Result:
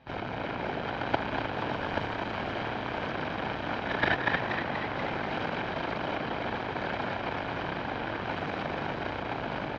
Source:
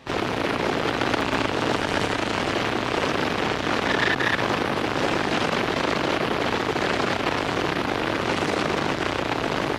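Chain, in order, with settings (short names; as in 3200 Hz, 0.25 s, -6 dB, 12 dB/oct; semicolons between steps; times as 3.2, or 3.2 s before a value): comb 1.3 ms, depth 41%; gate -18 dBFS, range -16 dB; air absorption 260 m; on a send: frequency-shifting echo 0.24 s, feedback 62%, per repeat +92 Hz, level -7.5 dB; on the sum: gain +7 dB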